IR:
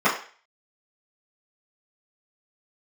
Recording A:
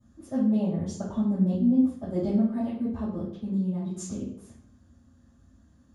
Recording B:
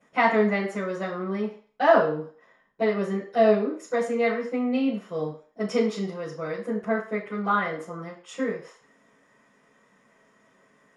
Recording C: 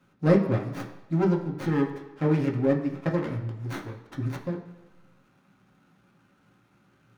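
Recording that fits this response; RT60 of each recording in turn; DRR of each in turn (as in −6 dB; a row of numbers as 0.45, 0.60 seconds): B; 0.60, 0.40, 1.2 seconds; −12.5, −13.0, 0.0 decibels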